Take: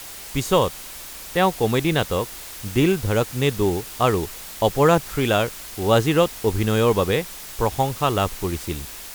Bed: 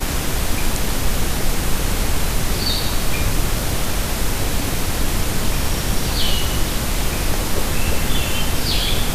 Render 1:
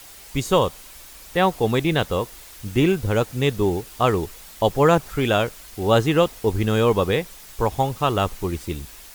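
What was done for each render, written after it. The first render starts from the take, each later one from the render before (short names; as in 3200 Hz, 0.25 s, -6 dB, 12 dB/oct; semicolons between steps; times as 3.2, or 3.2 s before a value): denoiser 7 dB, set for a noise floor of -37 dBFS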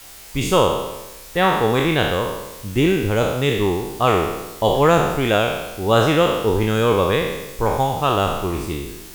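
spectral trails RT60 1.07 s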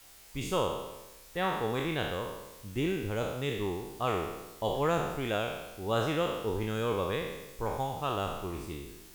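gain -14 dB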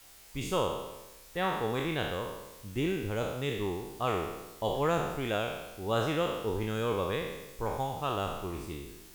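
nothing audible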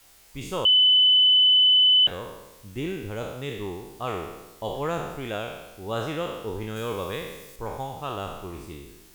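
0.65–2.07 bleep 3010 Hz -14 dBFS; 6.76–7.56 high shelf 3900 Hz +6.5 dB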